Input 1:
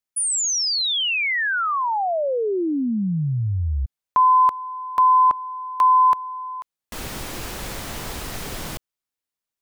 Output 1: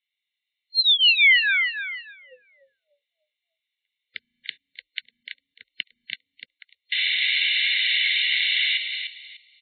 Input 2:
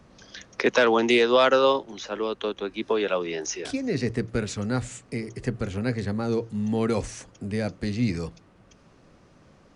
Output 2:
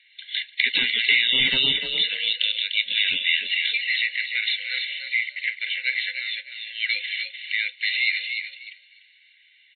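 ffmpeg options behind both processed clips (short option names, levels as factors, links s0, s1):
-filter_complex "[0:a]afftfilt=real='re*between(b*sr/4096,500,4200)':imag='im*between(b*sr/4096,500,4200)':win_size=4096:overlap=0.75,apsyclip=7.5,asuperstop=centerf=850:order=20:qfactor=0.61,acrossover=split=1000[s0][s1];[s0]asoftclip=type=tanh:threshold=0.0501[s2];[s1]acompressor=threshold=0.0891:ratio=8:attack=7.3:release=85:knee=6:detection=peak[s3];[s2][s3]amix=inputs=2:normalize=0,asplit=5[s4][s5][s6][s7][s8];[s5]adelay=297,afreqshift=35,volume=0.447[s9];[s6]adelay=594,afreqshift=70,volume=0.133[s10];[s7]adelay=891,afreqshift=105,volume=0.0403[s11];[s8]adelay=1188,afreqshift=140,volume=0.012[s12];[s4][s9][s10][s11][s12]amix=inputs=5:normalize=0,agate=range=0.447:threshold=0.00794:ratio=3:release=44:detection=peak,aecho=1:1:1.4:0.96" -ar 11025 -c:a libmp3lame -b:a 16k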